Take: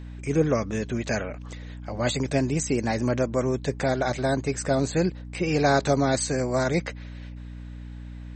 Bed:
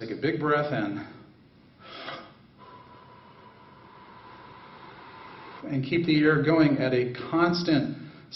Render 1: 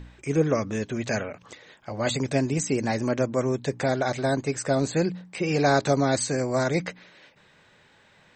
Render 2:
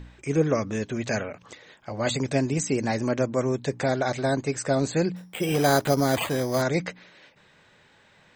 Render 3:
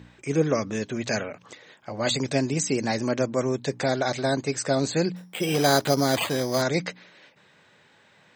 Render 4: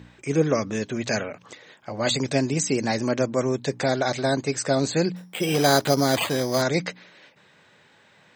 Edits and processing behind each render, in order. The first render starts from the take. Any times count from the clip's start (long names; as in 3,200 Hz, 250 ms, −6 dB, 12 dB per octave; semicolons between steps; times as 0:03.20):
hum removal 60 Hz, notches 5
0:05.16–0:06.62: bad sample-rate conversion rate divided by 8×, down none, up hold
high-pass filter 110 Hz; dynamic equaliser 4,500 Hz, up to +6 dB, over −47 dBFS, Q 1.2
level +1.5 dB